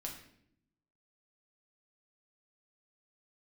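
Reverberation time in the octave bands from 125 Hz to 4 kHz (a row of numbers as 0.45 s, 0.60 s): 1.1 s, 1.1 s, 0.80 s, 0.60 s, 0.65 s, 0.55 s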